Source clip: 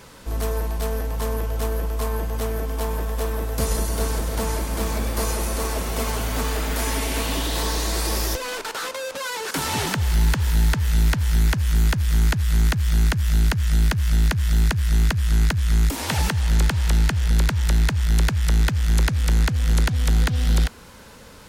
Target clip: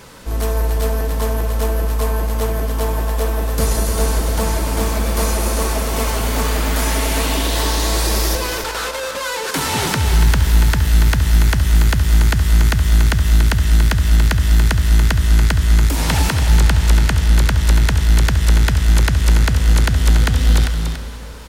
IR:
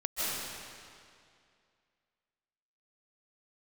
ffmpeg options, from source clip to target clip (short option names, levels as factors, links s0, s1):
-filter_complex "[0:a]aecho=1:1:69|285:0.237|0.422,asplit=2[s0][s1];[1:a]atrim=start_sample=2205[s2];[s1][s2]afir=irnorm=-1:irlink=0,volume=0.15[s3];[s0][s3]amix=inputs=2:normalize=0,volume=1.5"